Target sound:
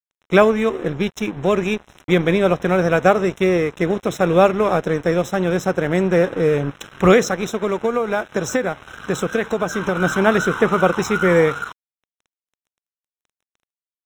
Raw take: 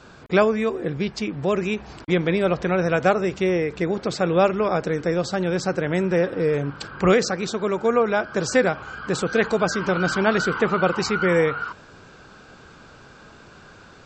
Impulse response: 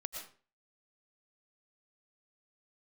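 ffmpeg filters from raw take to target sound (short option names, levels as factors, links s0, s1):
-filter_complex "[0:a]adynamicequalizer=threshold=0.0158:dfrequency=2900:dqfactor=0.85:tfrequency=2900:tqfactor=0.85:attack=5:release=100:ratio=0.375:range=1.5:mode=cutabove:tftype=bell,aeval=exprs='sgn(val(0))*max(abs(val(0))-0.015,0)':c=same,asettb=1/sr,asplit=3[s0][s1][s2];[s0]atrim=end=7.504[s3];[s1]atrim=start=7.5:end=10.02,asetpts=PTS-STARTPTS,afade=t=in:d=0.004:c=qsin,afade=t=out:st=2.516:d=0.004:c=qsin,acompressor=threshold=0.0891:ratio=10[s4];[s2]atrim=start=10.016[s5];[s3][s4]acrossfade=d=0.004:c1=hsin:c2=qsin[s6];[s6][s5]acrossfade=d=0.004:c1=qsin:c2=hsin,asuperstop=centerf=4600:order=12:qfactor=3.9,volume=1.88"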